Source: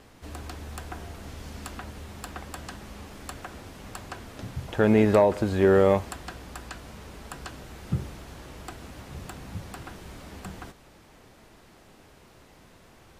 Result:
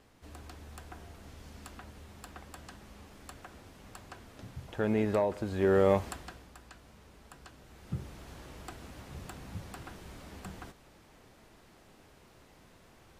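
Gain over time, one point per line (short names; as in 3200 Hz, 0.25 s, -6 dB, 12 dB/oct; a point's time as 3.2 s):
5.43 s -9.5 dB
6.07 s -2.5 dB
6.53 s -13 dB
7.57 s -13 dB
8.29 s -5 dB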